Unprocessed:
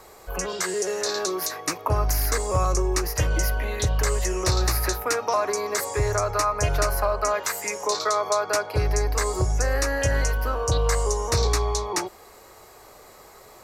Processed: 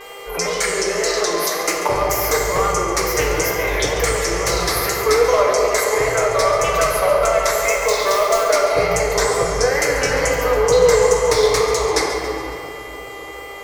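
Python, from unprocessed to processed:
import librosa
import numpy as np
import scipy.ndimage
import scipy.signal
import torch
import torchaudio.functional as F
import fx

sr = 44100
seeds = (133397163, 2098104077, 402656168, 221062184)

p1 = np.minimum(x, 2.0 * 10.0 ** (-15.0 / 20.0) - x)
p2 = fx.low_shelf(p1, sr, hz=420.0, db=-10.5)
p3 = p2 + 0.65 * np.pad(p2, (int(6.4 * sr / 1000.0), 0))[:len(p2)]
p4 = fx.rider(p3, sr, range_db=4, speed_s=0.5)
p5 = p3 + (p4 * 10.0 ** (2.0 / 20.0))
p6 = fx.mod_noise(p5, sr, seeds[0], snr_db=14, at=(7.54, 8.51))
p7 = fx.wow_flutter(p6, sr, seeds[1], rate_hz=2.1, depth_cents=140.0)
p8 = fx.dmg_buzz(p7, sr, base_hz=400.0, harmonics=8, level_db=-38.0, tilt_db=-1, odd_only=False)
p9 = fx.small_body(p8, sr, hz=(480.0, 2100.0), ring_ms=25, db=11)
p10 = p9 + fx.echo_thinned(p9, sr, ms=139, feedback_pct=56, hz=420.0, wet_db=-14, dry=0)
p11 = fx.room_shoebox(p10, sr, seeds[2], volume_m3=170.0, walls='hard', distance_m=0.53)
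y = p11 * 10.0 ** (-4.5 / 20.0)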